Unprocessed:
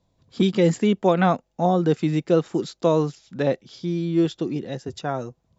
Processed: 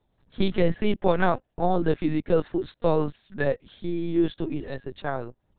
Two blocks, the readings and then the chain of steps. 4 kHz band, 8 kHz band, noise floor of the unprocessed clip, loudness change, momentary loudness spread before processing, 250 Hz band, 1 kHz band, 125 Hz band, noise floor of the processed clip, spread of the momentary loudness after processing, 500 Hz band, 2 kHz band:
-5.0 dB, no reading, -71 dBFS, -4.0 dB, 10 LU, -4.5 dB, -3.0 dB, -5.5 dB, -73 dBFS, 9 LU, -3.0 dB, +0.5 dB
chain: peaking EQ 1.7 kHz +8.5 dB 0.21 oct; LPC vocoder at 8 kHz pitch kept; trim -2.5 dB

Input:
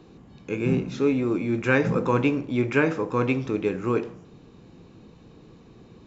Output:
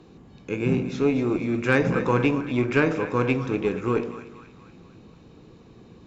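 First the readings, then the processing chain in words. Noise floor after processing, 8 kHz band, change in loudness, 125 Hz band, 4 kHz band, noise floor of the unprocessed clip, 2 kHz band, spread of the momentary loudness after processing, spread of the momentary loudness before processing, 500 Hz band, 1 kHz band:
-50 dBFS, no reading, +0.5 dB, +1.0 dB, +2.0 dB, -51 dBFS, +1.0 dB, 6 LU, 5 LU, +0.5 dB, +1.0 dB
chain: two-band feedback delay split 870 Hz, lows 105 ms, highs 239 ms, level -11 dB; Chebyshev shaper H 6 -27 dB, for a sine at -5 dBFS

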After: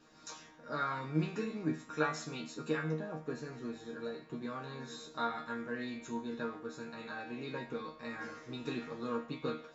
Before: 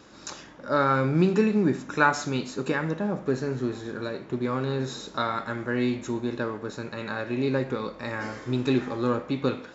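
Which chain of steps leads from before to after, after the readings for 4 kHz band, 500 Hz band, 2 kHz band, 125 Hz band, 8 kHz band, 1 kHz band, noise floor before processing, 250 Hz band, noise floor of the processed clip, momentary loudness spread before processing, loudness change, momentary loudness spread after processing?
-10.0 dB, -12.5 dB, -11.5 dB, -13.0 dB, no reading, -11.0 dB, -47 dBFS, -13.0 dB, -57 dBFS, 11 LU, -12.5 dB, 9 LU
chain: chord resonator D#3 fifth, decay 0.37 s; harmonic-percussive split harmonic -6 dB; trim +9 dB

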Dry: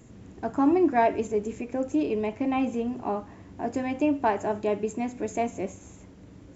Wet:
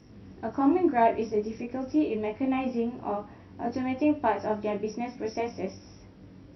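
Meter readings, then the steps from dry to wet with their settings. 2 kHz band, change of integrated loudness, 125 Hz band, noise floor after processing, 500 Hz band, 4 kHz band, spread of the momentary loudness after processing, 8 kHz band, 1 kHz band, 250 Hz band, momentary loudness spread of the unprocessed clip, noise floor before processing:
-2.0 dB, -1.5 dB, -1.0 dB, -50 dBFS, -1.5 dB, 0.0 dB, 12 LU, no reading, -1.0 dB, -1.0 dB, 12 LU, -49 dBFS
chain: knee-point frequency compression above 3.4 kHz 1.5:1; chorus 0.5 Hz, delay 19.5 ms, depth 6.9 ms; trim +1.5 dB

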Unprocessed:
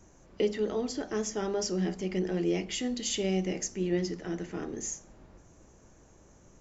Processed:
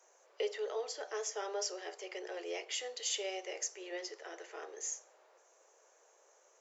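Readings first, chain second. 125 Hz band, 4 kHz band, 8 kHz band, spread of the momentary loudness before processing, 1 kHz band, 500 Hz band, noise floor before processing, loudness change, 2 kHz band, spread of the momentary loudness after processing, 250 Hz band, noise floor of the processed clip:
under -40 dB, -3.0 dB, no reading, 7 LU, -3.0 dB, -8.0 dB, -58 dBFS, -8.0 dB, -3.0 dB, 9 LU, -22.0 dB, -67 dBFS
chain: steep high-pass 440 Hz 48 dB/octave; trim -3 dB

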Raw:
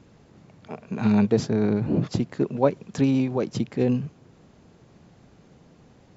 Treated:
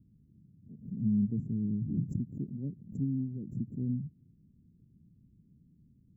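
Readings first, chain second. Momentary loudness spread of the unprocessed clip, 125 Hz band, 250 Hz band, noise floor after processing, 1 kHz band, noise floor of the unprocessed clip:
10 LU, -7.0 dB, -9.5 dB, -65 dBFS, under -40 dB, -55 dBFS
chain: inverse Chebyshev band-stop 890–4600 Hz, stop band 70 dB; swell ahead of each attack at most 140 dB/s; trim -7 dB

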